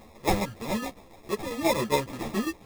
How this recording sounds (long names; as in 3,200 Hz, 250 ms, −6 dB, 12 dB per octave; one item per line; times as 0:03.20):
a quantiser's noise floor 8 bits, dither triangular
tremolo saw down 7.3 Hz, depth 55%
aliases and images of a low sample rate 1,500 Hz, jitter 0%
a shimmering, thickened sound